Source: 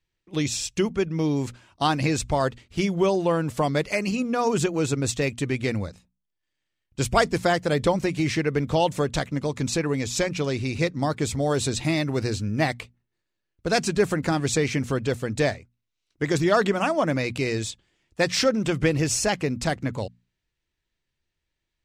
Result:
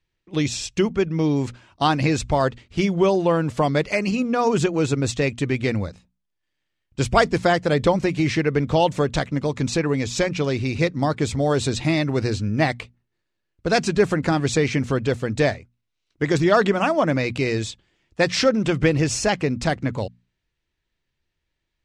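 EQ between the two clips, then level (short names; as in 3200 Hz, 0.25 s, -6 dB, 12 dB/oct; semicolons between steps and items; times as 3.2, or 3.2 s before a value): air absorption 60 m; +3.5 dB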